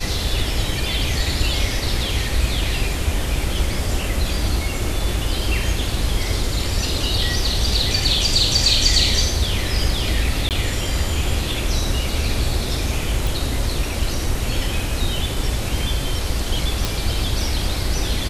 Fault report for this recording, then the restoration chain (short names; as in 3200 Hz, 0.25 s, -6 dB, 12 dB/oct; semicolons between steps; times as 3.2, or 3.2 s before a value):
10.49–10.51 gap 18 ms
13.27 pop
16.85 pop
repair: de-click; interpolate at 10.49, 18 ms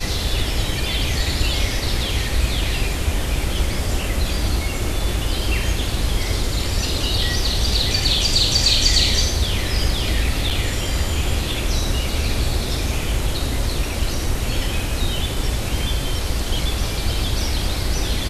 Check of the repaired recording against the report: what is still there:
none